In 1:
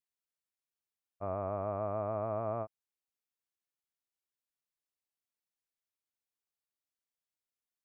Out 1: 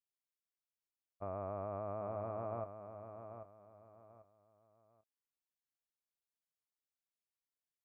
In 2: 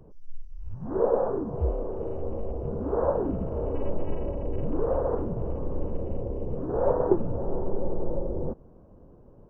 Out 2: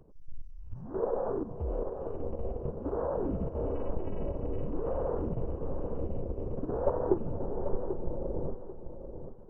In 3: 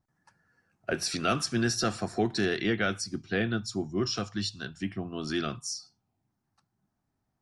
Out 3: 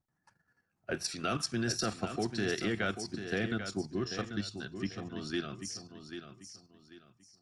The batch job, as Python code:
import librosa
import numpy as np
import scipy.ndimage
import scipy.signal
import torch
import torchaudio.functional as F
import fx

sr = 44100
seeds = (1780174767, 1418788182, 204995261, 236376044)

p1 = fx.level_steps(x, sr, step_db=10)
p2 = p1 + fx.echo_feedback(p1, sr, ms=790, feedback_pct=29, wet_db=-9.0, dry=0)
y = p2 * 10.0 ** (-1.5 / 20.0)